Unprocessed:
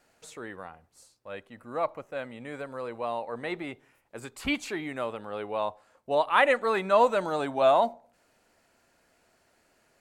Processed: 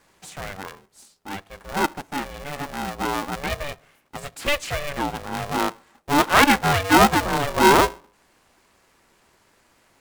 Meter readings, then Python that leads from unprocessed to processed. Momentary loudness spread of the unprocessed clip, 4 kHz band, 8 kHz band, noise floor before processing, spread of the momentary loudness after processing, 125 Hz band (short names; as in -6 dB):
21 LU, +12.5 dB, +18.0 dB, -68 dBFS, 21 LU, +16.0 dB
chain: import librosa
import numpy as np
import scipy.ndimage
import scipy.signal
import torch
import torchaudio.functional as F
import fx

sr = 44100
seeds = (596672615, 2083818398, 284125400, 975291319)

y = x * np.sign(np.sin(2.0 * np.pi * 290.0 * np.arange(len(x)) / sr))
y = y * librosa.db_to_amplitude(6.5)